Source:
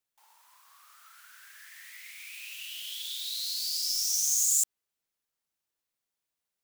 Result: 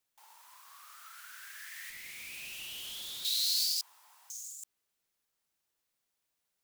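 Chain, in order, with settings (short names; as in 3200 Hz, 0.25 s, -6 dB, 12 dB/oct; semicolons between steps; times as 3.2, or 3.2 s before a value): negative-ratio compressor -33 dBFS, ratio -0.5; 1.9–3.25 tube stage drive 40 dB, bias 0.45; 3.81–4.3 room tone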